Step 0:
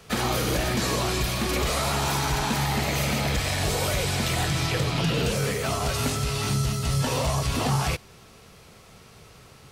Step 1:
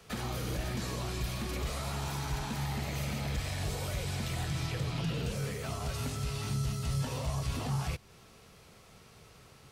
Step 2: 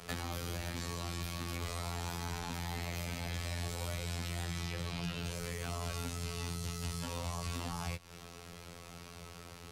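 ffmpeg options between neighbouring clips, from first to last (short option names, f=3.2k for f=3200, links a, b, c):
-filter_complex "[0:a]acrossover=split=190[a][b];[b]acompressor=threshold=-36dB:ratio=2[c];[a][c]amix=inputs=2:normalize=0,volume=-6.5dB"
-filter_complex "[0:a]afftfilt=real='hypot(re,im)*cos(PI*b)':imag='0':win_size=2048:overlap=0.75,acrossover=split=130|720[a][b][c];[a]acompressor=threshold=-52dB:ratio=4[d];[b]acompressor=threshold=-55dB:ratio=4[e];[c]acompressor=threshold=-49dB:ratio=4[f];[d][e][f]amix=inputs=3:normalize=0,volume=9.5dB"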